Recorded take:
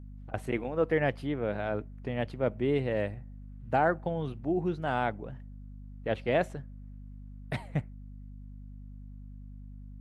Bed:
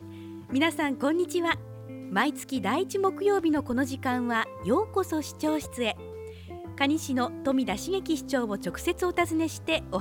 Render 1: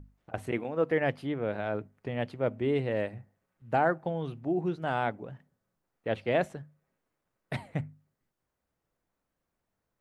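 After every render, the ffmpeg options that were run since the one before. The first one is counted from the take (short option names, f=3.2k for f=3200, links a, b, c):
-af "bandreject=f=50:t=h:w=6,bandreject=f=100:t=h:w=6,bandreject=f=150:t=h:w=6,bandreject=f=200:t=h:w=6,bandreject=f=250:t=h:w=6"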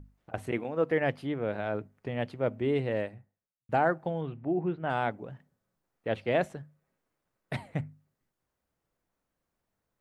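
-filter_complex "[0:a]asettb=1/sr,asplit=3[a][b][c];[a]atrim=end=4.214[d];[b]atrim=start=4.21:end=4.9,asetpts=PTS-STARTPTS,afade=t=in:d=0.004:c=qsin,afade=t=out:st=0.686:d=0.004:c=qsin,lowpass=f=2.9k:w=0.5412,lowpass=f=2.9k:w=1.3066[e];[c]atrim=start=4.896[f];[d][e]acrossfade=d=0.004:c1=hsin:c2=qsin[g];[g][f]acrossfade=d=0.004:c1=qsin:c2=hsin,asplit=2[h][i];[h]atrim=end=3.69,asetpts=PTS-STARTPTS,afade=t=out:st=2.96:d=0.73:c=qua[j];[i]atrim=start=3.69,asetpts=PTS-STARTPTS,afade=t=in:d=0.004:c=hsin[k];[j][k]concat=n=2:v=0:a=1"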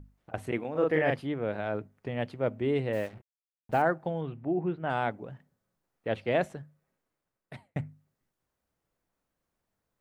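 -filter_complex "[0:a]asettb=1/sr,asplit=3[a][b][c];[a]atrim=end=0.714[d];[b]atrim=start=0.71:end=1.2,asetpts=PTS-STARTPTS,afade=t=in:d=0.004:c=qsin,afade=t=out:st=0.486:d=0.004:c=qsin,asplit=2[e][f];[f]adelay=39,volume=-2dB[g];[e][g]amix=inputs=2:normalize=0,atrim=end_sample=21609[h];[c]atrim=start=1.196[i];[d][h]acrossfade=d=0.004:c1=hsin:c2=qsin[j];[j][i]acrossfade=d=0.004:c1=qsin:c2=hsin,asettb=1/sr,asplit=3[k][l][m];[k]atrim=end=2.934[n];[l]atrim=start=2.93:end=3.82,asetpts=PTS-STARTPTS,afade=t=in:d=0.004:c=qsin,afade=t=out:st=0.886:d=0.004:c=qsin,acrusher=bits=7:mix=0:aa=0.5[o];[m]atrim=start=3.816[p];[n][o]acrossfade=d=0.004:c1=hsin:c2=qsin[q];[q][p]acrossfade=d=0.004:c1=qsin:c2=hsin,asplit=2[r][s];[r]atrim=end=7.76,asetpts=PTS-STARTPTS,afade=t=out:st=6.6:d=1.16:c=qsin[t];[s]atrim=start=7.76,asetpts=PTS-STARTPTS,afade=t=in:d=0.004:c=hsin[u];[t][u]concat=n=2:v=0:a=1"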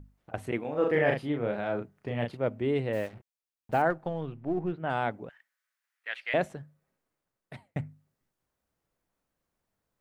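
-filter_complex "[0:a]asettb=1/sr,asplit=3[a][b][c];[a]atrim=end=0.634[d];[b]atrim=start=0.63:end=2.37,asetpts=PTS-STARTPTS,afade=t=in:d=0.004:c=qsin,afade=t=out:st=1.736:d=0.004:c=qsin,asplit=2[e][f];[f]adelay=34,volume=-5dB[g];[e][g]amix=inputs=2:normalize=0,atrim=end_sample=76734[h];[c]atrim=start=2.366[i];[d][h]acrossfade=d=0.004:c1=hsin:c2=qsin[j];[j][i]acrossfade=d=0.004:c1=qsin:c2=hsin,asettb=1/sr,asplit=3[k][l][m];[k]atrim=end=3.904[n];[l]atrim=start=3.9:end=4.73,asetpts=PTS-STARTPTS,afade=t=in:d=0.004:c=qsin,afade=t=out:st=0.826:d=0.004:c=qsin,aeval=exprs='if(lt(val(0),0),0.708*val(0),val(0))':c=same[o];[m]atrim=start=4.726[p];[n][o]acrossfade=d=0.004:c1=hsin:c2=qsin[q];[q][p]acrossfade=d=0.004:c1=qsin:c2=hsin,asettb=1/sr,asplit=3[r][s][t];[r]atrim=end=5.294[u];[s]atrim=start=5.29:end=6.34,asetpts=PTS-STARTPTS,afade=t=in:d=0.004:c=qsin,afade=t=out:st=1.046:d=0.004:c=qsin,highpass=f=1.8k:t=q:w=2.2[v];[t]atrim=start=6.336[w];[u][v]acrossfade=d=0.004:c1=hsin:c2=qsin[x];[x][w]acrossfade=d=0.004:c1=qsin:c2=hsin"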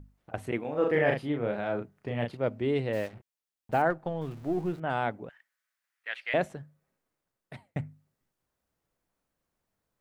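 -filter_complex "[0:a]asettb=1/sr,asplit=3[a][b][c];[a]atrim=end=2.364[d];[b]atrim=start=2.36:end=3.08,asetpts=PTS-STARTPTS,afade=t=in:d=0.004:c=qsin,afade=t=out:st=0.716:d=0.004:c=qsin,equalizer=f=4.7k:w=1.5:g=5[e];[c]atrim=start=3.076[f];[d][e]acrossfade=d=0.004:c1=hsin:c2=qsin[g];[g][f]acrossfade=d=0.004:c1=qsin:c2=hsin,asettb=1/sr,asplit=3[h][i][j];[h]atrim=end=4.214[k];[i]atrim=start=4.21:end=4.8,asetpts=PTS-STARTPTS,afade=t=in:d=0.004:c=qsin,afade=t=out:st=0.586:d=0.004:c=qsin,aeval=exprs='val(0)+0.5*0.00473*sgn(val(0))':c=same[l];[j]atrim=start=4.796[m];[k][l]acrossfade=d=0.004:c1=hsin:c2=qsin[n];[n][m]acrossfade=d=0.004:c1=qsin:c2=hsin"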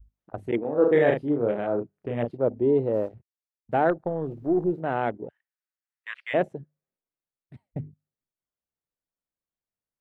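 -af "afwtdn=0.0126,adynamicequalizer=threshold=0.00891:dfrequency=390:dqfactor=0.94:tfrequency=390:tqfactor=0.94:attack=5:release=100:ratio=0.375:range=4:mode=boostabove:tftype=bell"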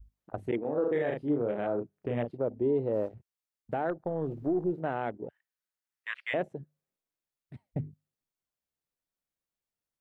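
-af "alimiter=limit=-20.5dB:level=0:latency=1:release=324"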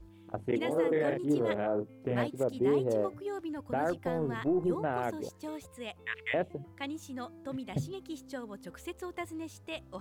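-filter_complex "[1:a]volume=-13.5dB[a];[0:a][a]amix=inputs=2:normalize=0"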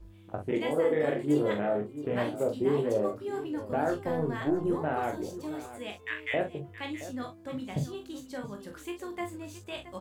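-filter_complex "[0:a]asplit=2[a][b];[b]adelay=20,volume=-5.5dB[c];[a][c]amix=inputs=2:normalize=0,asplit=2[d][e];[e]aecho=0:1:43|672:0.447|0.211[f];[d][f]amix=inputs=2:normalize=0"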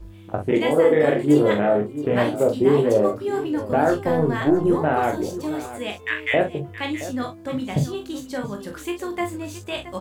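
-af "volume=10dB"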